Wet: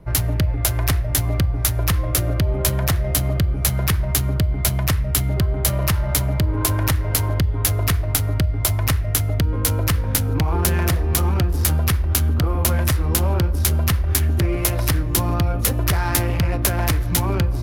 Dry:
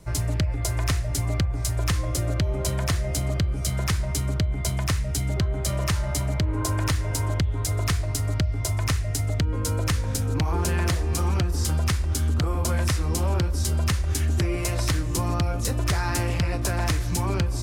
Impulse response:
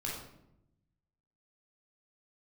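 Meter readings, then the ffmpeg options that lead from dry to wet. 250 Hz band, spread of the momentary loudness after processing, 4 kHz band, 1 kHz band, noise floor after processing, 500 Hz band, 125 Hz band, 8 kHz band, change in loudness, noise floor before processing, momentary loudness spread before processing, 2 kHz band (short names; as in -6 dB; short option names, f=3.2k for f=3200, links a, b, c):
+4.5 dB, 2 LU, +4.5 dB, +4.0 dB, -23 dBFS, +4.0 dB, +4.5 dB, +6.5 dB, +5.5 dB, -28 dBFS, 2 LU, +4.5 dB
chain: -filter_complex "[0:a]aexciter=amount=14.3:drive=8.4:freq=11k,adynamicsmooth=sensitivity=3:basefreq=2.1k,asplit=2[a][b];[1:a]atrim=start_sample=2205[c];[b][c]afir=irnorm=-1:irlink=0,volume=-23dB[d];[a][d]amix=inputs=2:normalize=0,volume=4dB"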